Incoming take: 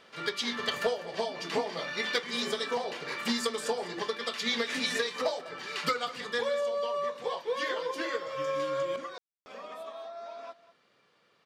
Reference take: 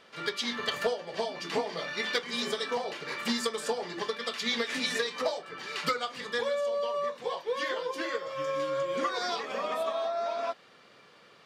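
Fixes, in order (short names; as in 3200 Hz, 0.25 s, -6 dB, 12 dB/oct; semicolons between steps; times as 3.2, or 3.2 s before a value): room tone fill 9.18–9.46; inverse comb 0.198 s -17.5 dB; gain correction +11 dB, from 8.96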